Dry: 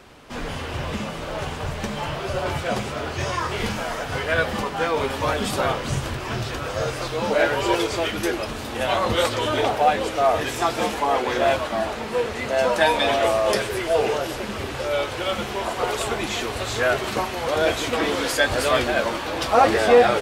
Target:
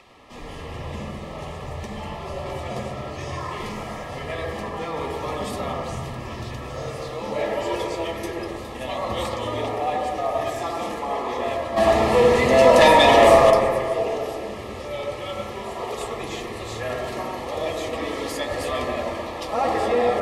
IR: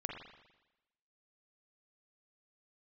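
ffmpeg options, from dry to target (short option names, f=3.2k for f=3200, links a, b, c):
-filter_complex "[0:a]acrossover=split=580|5300[a][b][c];[b]acompressor=mode=upward:threshold=-39dB:ratio=2.5[d];[a][d][c]amix=inputs=3:normalize=0,asplit=3[e][f][g];[e]afade=t=out:st=11.76:d=0.02[h];[f]aeval=exprs='0.891*sin(PI/2*3.16*val(0)/0.891)':c=same,afade=t=in:st=11.76:d=0.02,afade=t=out:st=13.49:d=0.02[i];[g]afade=t=in:st=13.49:d=0.02[j];[h][i][j]amix=inputs=3:normalize=0,asuperstop=centerf=1500:order=12:qfactor=5.5[k];[1:a]atrim=start_sample=2205,asetrate=25137,aresample=44100[l];[k][l]afir=irnorm=-1:irlink=0,volume=-8.5dB"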